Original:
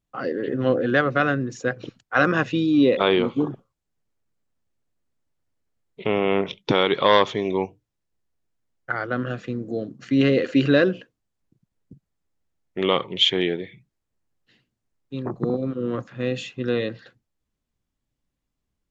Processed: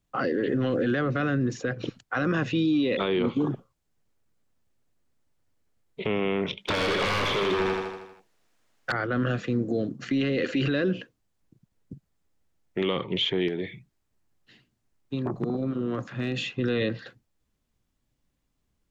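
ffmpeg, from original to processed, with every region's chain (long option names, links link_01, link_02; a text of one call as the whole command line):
ffmpeg -i in.wav -filter_complex "[0:a]asettb=1/sr,asplit=3[link_01][link_02][link_03];[link_01]atrim=end=6.574[link_04];[link_02]atrim=start=6.57:end=8.92,asetpts=PTS-STARTPTS,afade=type=in:duration=0.004:curve=qsin,afade=type=out:start_time=2.346:duration=0.004:curve=qsin,aeval=exprs='0.0891*(abs(mod(val(0)/0.0891+3,4)-2)-1)':channel_layout=same,asplit=2[link_05][link_06];[link_06]highpass=frequency=720:poles=1,volume=17dB,asoftclip=type=tanh:threshold=-17.5dB[link_07];[link_05][link_07]amix=inputs=2:normalize=0,lowpass=frequency=5700:poles=1,volume=-6dB,aecho=1:1:79|158|237|316|395|474|553:0.562|0.315|0.176|0.0988|0.0553|0.031|0.0173,atrim=end_sample=103635[link_08];[link_03]atrim=start=8.916[link_09];[link_04][link_08]acrossfade=duration=0.004:curve1=hsin:curve2=qsin[link_10];[link_10][link_09]acrossfade=duration=0.004:curve1=qsin:curve2=hsin,asettb=1/sr,asplit=3[link_11][link_12][link_13];[link_11]atrim=end=13.484[link_14];[link_12]atrim=start=13.48:end=16.47,asetpts=PTS-STARTPTS,afade=type=in:duration=0.004:curve=qsin,afade=type=out:start_time=2.986:duration=0.004:curve=qsin,bandreject=frequency=500:width=9.3,acompressor=threshold=-29dB:ratio=4:attack=3.2:release=140:knee=1:detection=peak,volume=23.5dB,asoftclip=hard,volume=-23.5dB[link_15];[link_13]atrim=start=16.466[link_16];[link_14][link_15]acrossfade=duration=0.004:curve1=hsin:curve2=qsin[link_17];[link_17][link_16]acrossfade=duration=0.004:curve1=qsin:curve2=hsin,acrossover=split=390|1300|4800[link_18][link_19][link_20][link_21];[link_18]acompressor=threshold=-23dB:ratio=4[link_22];[link_19]acompressor=threshold=-34dB:ratio=4[link_23];[link_20]acompressor=threshold=-31dB:ratio=4[link_24];[link_21]acompressor=threshold=-56dB:ratio=4[link_25];[link_22][link_23][link_24][link_25]amix=inputs=4:normalize=0,alimiter=limit=-22dB:level=0:latency=1:release=10,volume=4.5dB" out.wav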